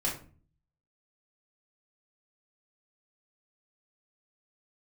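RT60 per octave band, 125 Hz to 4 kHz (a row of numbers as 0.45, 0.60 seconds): 0.80, 0.65, 0.45, 0.35, 0.35, 0.25 seconds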